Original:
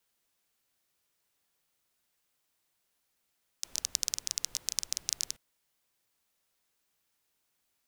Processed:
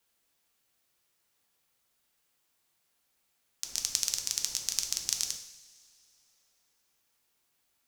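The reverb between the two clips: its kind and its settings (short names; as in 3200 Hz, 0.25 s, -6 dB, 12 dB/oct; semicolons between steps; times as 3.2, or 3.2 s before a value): two-slope reverb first 0.73 s, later 3 s, from -18 dB, DRR 4 dB; gain +1.5 dB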